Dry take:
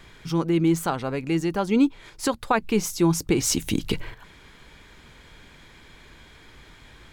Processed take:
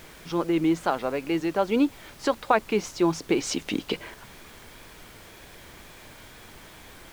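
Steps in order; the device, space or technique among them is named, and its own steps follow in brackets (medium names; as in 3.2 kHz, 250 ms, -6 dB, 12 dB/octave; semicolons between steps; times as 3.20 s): horn gramophone (band-pass 280–4400 Hz; peaking EQ 610 Hz +5 dB 0.42 oct; wow and flutter; pink noise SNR 20 dB)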